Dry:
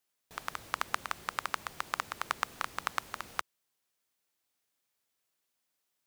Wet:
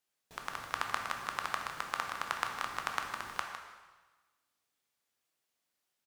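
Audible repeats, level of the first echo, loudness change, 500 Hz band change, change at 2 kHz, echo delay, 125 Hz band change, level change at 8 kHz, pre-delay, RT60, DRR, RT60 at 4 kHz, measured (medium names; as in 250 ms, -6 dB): 1, -10.0 dB, -0.5 dB, 0.0 dB, 0.0 dB, 156 ms, 0.0 dB, -1.5 dB, 6 ms, 1.3 s, 2.0 dB, 1.2 s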